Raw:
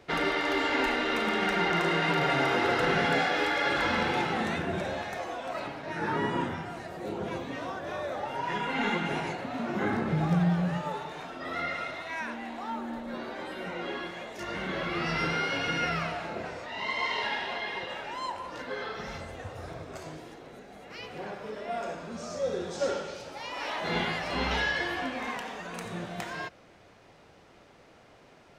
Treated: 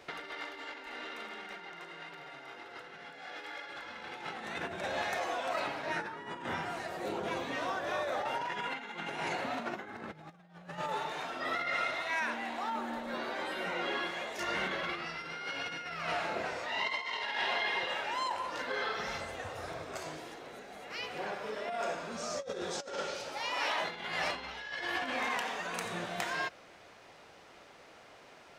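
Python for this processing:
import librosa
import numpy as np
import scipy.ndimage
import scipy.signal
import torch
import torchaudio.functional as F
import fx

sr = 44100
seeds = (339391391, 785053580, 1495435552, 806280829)

y = fx.over_compress(x, sr, threshold_db=-34.0, ratio=-0.5)
y = fx.low_shelf(y, sr, hz=350.0, db=-12.0)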